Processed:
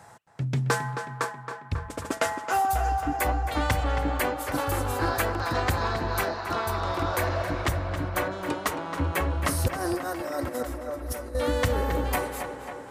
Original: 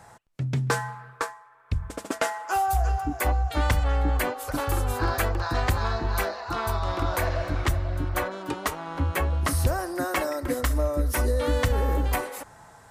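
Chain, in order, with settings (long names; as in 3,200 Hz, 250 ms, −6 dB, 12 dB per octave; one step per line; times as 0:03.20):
high-pass filter 76 Hz 12 dB per octave
0:09.68–0:11.35: compressor whose output falls as the input rises −32 dBFS, ratio −0.5
tape delay 270 ms, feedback 73%, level −7.5 dB, low-pass 3,900 Hz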